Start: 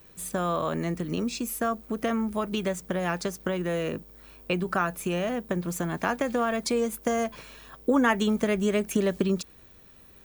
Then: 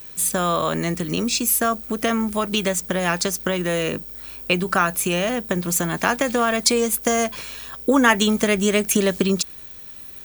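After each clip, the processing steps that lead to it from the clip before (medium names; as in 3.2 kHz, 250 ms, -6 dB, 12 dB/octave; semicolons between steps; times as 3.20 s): treble shelf 2.3 kHz +11 dB; trim +5 dB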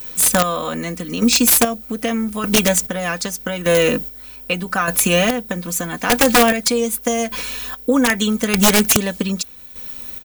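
comb 4 ms, depth 70%; square tremolo 0.82 Hz, depth 60%, duty 35%; integer overflow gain 10.5 dB; trim +5.5 dB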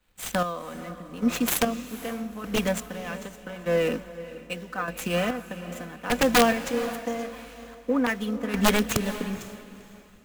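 median filter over 9 samples; echo that smears into a reverb 487 ms, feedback 50%, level -9 dB; three bands expanded up and down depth 70%; trim -9.5 dB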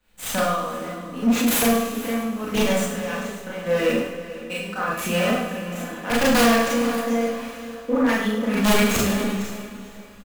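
feedback delay 102 ms, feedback 43%, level -11 dB; Schroeder reverb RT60 0.46 s, combs from 27 ms, DRR -5.5 dB; saturation -12 dBFS, distortion -11 dB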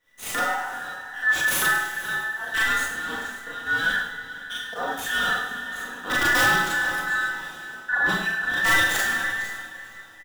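every band turned upside down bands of 2 kHz; trim -3 dB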